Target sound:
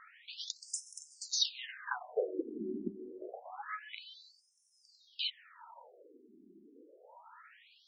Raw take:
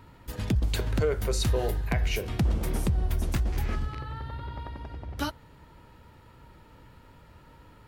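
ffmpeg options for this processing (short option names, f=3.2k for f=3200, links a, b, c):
-af "asubboost=boost=10:cutoff=68,alimiter=level_in=14.5dB:limit=-1dB:release=50:level=0:latency=1,afftfilt=real='re*between(b*sr/1024,280*pow(7400/280,0.5+0.5*sin(2*PI*0.27*pts/sr))/1.41,280*pow(7400/280,0.5+0.5*sin(2*PI*0.27*pts/sr))*1.41)':imag='im*between(b*sr/1024,280*pow(7400/280,0.5+0.5*sin(2*PI*0.27*pts/sr))/1.41,280*pow(7400/280,0.5+0.5*sin(2*PI*0.27*pts/sr))*1.41)':win_size=1024:overlap=0.75,volume=-8dB"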